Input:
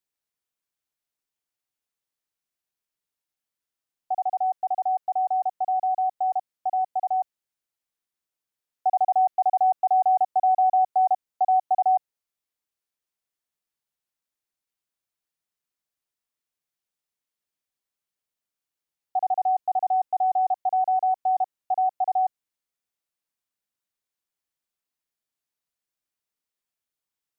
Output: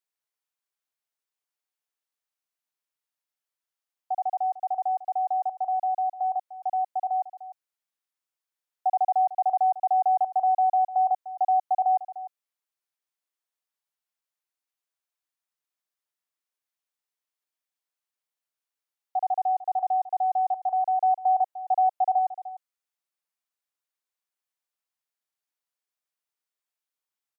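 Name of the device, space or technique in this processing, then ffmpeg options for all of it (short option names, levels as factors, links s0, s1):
filter by subtraction: -filter_complex "[0:a]asettb=1/sr,asplit=3[s0][s1][s2];[s0]atrim=end=21.004[s3];[s1]atrim=start=21:end=22.19,asetpts=PTS-STARTPTS,afade=t=in:d=0.004:c=qsin,afade=t=out:st=1.186:d=0.004:c=qsin,equalizer=f=690:w=1.5:g=3.5[s4];[s2]atrim=start=22.186[s5];[s3][s4]acrossfade=d=0.004:c1=hsin:c2=qsin[s6];[s6][s5]acrossfade=d=0.004:c1=qsin:c2=hsin,aecho=1:1:300:0.178,asplit=2[s7][s8];[s8]lowpass=880,volume=-1[s9];[s7][s9]amix=inputs=2:normalize=0,volume=0.708"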